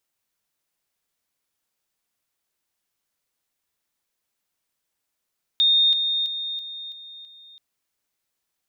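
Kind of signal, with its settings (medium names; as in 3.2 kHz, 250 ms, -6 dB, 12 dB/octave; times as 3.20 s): level ladder 3.67 kHz -14.5 dBFS, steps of -6 dB, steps 6, 0.33 s 0.00 s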